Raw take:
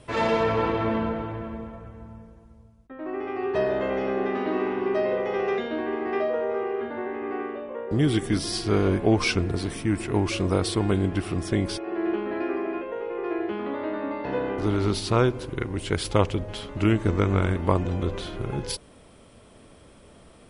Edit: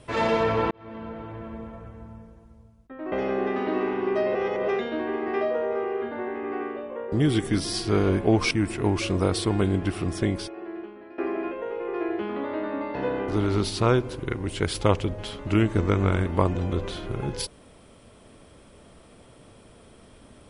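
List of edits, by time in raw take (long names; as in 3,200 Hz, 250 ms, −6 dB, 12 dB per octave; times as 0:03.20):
0:00.71–0:01.81: fade in
0:03.12–0:03.91: remove
0:05.14–0:05.47: reverse
0:09.30–0:09.81: remove
0:11.53–0:12.48: fade out quadratic, to −17 dB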